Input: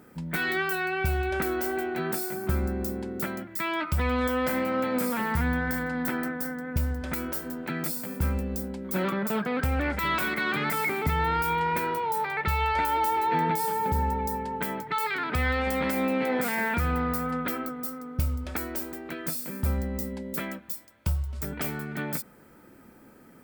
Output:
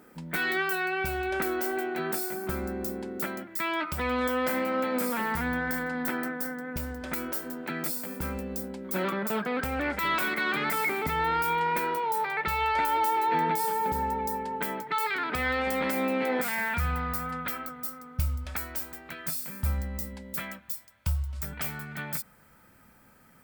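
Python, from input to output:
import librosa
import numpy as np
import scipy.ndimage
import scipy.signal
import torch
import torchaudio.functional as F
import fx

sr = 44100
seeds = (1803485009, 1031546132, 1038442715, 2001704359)

y = fx.peak_eq(x, sr, hz=fx.steps((0.0, 91.0), (16.42, 340.0)), db=-14.0, octaves=1.4)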